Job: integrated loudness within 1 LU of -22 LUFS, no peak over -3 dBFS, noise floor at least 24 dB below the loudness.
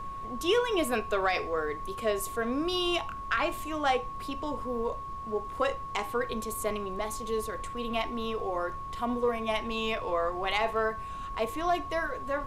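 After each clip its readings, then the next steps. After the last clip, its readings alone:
steady tone 1100 Hz; tone level -37 dBFS; noise floor -39 dBFS; noise floor target -55 dBFS; loudness -31.0 LUFS; peak -15.5 dBFS; loudness target -22.0 LUFS
-> notch 1100 Hz, Q 30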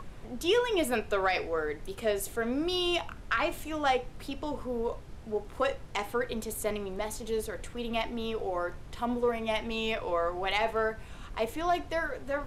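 steady tone none; noise floor -46 dBFS; noise floor target -56 dBFS
-> noise print and reduce 10 dB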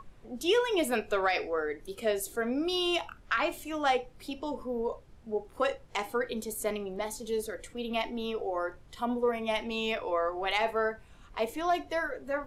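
noise floor -54 dBFS; noise floor target -56 dBFS
-> noise print and reduce 6 dB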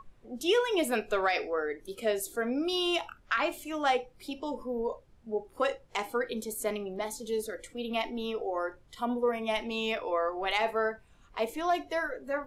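noise floor -59 dBFS; loudness -31.5 LUFS; peak -16.0 dBFS; loudness target -22.0 LUFS
-> gain +9.5 dB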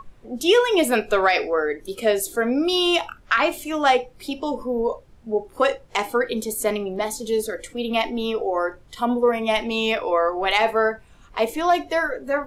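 loudness -22.0 LUFS; peak -6.5 dBFS; noise floor -50 dBFS

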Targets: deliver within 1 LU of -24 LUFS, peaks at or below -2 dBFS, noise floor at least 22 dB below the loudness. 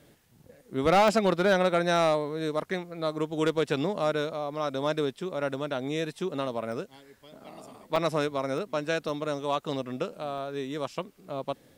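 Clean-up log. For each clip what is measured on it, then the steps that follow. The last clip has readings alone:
clipped 0.4%; flat tops at -16.0 dBFS; dropouts 6; longest dropout 1.1 ms; loudness -29.0 LUFS; peak -16.0 dBFS; loudness target -24.0 LUFS
-> clip repair -16 dBFS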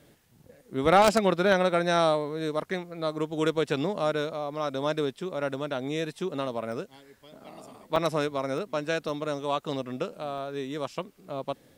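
clipped 0.0%; dropouts 6; longest dropout 1.1 ms
-> interpolate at 1.08/6.72/7.96/8.58/9.09/10.38, 1.1 ms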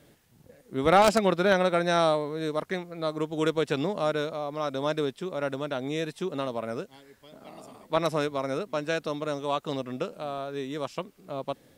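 dropouts 0; loudness -28.5 LUFS; peak -7.0 dBFS; loudness target -24.0 LUFS
-> gain +4.5 dB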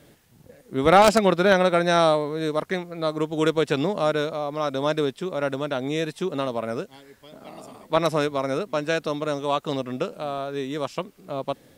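loudness -24.0 LUFS; peak -2.5 dBFS; noise floor -56 dBFS

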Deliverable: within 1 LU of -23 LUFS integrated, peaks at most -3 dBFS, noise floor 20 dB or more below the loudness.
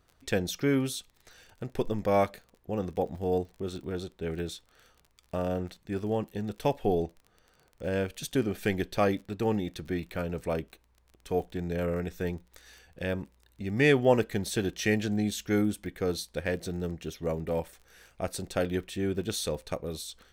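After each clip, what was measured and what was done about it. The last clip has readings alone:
ticks 28/s; loudness -31.0 LUFS; peak -10.0 dBFS; loudness target -23.0 LUFS
-> de-click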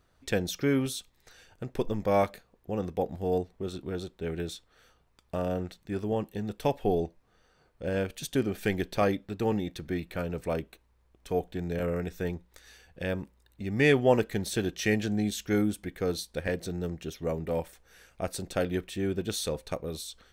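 ticks 0.20/s; loudness -31.0 LUFS; peak -10.0 dBFS; loudness target -23.0 LUFS
-> gain +8 dB; limiter -3 dBFS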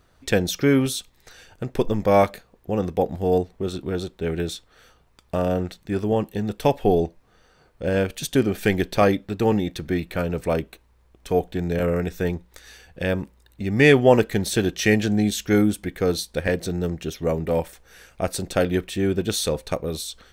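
loudness -23.0 LUFS; peak -3.0 dBFS; noise floor -59 dBFS

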